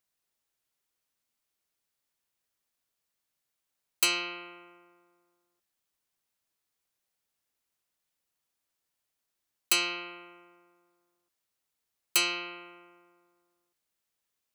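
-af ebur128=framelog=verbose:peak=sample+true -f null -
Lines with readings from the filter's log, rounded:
Integrated loudness:
  I:         -28.3 LUFS
  Threshold: -41.7 LUFS
Loudness range:
  LRA:         2.9 LU
  Threshold: -55.3 LUFS
  LRA low:   -35.4 LUFS
  LRA high:  -32.5 LUFS
Sample peak:
  Peak:      -10.2 dBFS
True peak:
  Peak:       -8.9 dBFS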